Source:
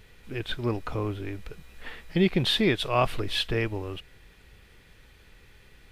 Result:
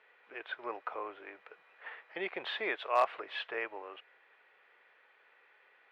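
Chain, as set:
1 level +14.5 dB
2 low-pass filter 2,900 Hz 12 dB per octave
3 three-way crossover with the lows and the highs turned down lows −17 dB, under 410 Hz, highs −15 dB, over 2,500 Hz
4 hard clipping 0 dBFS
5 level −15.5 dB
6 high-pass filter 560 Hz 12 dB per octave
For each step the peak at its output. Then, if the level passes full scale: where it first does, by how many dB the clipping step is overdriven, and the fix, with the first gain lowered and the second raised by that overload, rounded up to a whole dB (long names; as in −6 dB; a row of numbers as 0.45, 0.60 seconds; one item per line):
+4.5, +4.0, +3.5, 0.0, −15.5, −16.5 dBFS
step 1, 3.5 dB
step 1 +10.5 dB, step 5 −11.5 dB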